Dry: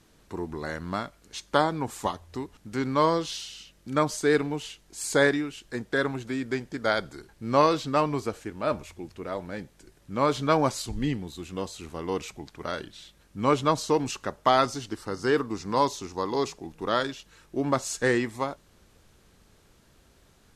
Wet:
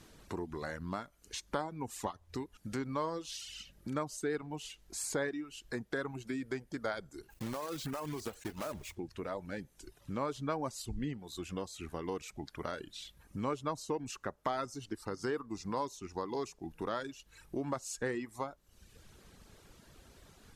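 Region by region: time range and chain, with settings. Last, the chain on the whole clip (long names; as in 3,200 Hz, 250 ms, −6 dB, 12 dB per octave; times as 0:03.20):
0:07.30–0:08.96: one scale factor per block 3 bits + downward compressor 12 to 1, threshold −28 dBFS
whole clip: reverb reduction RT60 0.76 s; dynamic equaliser 3,500 Hz, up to −5 dB, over −45 dBFS, Q 1; downward compressor 2.5 to 1, threshold −43 dBFS; level +3 dB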